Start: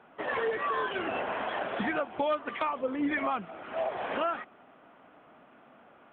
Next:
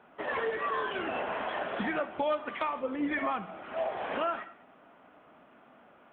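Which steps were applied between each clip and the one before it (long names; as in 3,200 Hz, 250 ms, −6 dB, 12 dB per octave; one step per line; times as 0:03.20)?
reverb whose tail is shaped and stops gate 250 ms falling, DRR 10 dB
level −1.5 dB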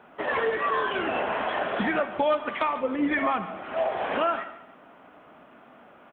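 repeating echo 144 ms, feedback 35%, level −16 dB
level +6 dB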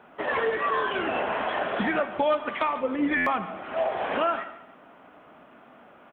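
buffer that repeats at 0:03.16, samples 512, times 8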